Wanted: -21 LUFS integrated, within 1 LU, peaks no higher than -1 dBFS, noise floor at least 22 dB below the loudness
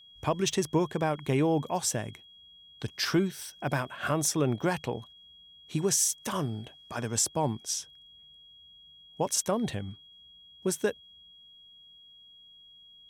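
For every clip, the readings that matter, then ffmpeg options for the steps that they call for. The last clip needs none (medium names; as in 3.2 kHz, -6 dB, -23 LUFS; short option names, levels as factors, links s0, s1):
steady tone 3.3 kHz; tone level -52 dBFS; loudness -30.0 LUFS; peak level -14.0 dBFS; loudness target -21.0 LUFS
-> -af "bandreject=f=3300:w=30"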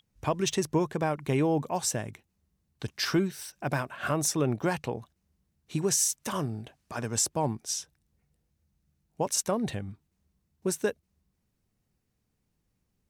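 steady tone not found; loudness -29.5 LUFS; peak level -14.0 dBFS; loudness target -21.0 LUFS
-> -af "volume=2.66"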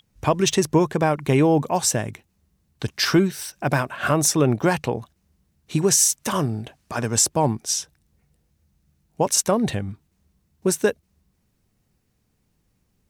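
loudness -21.5 LUFS; peak level -5.5 dBFS; noise floor -69 dBFS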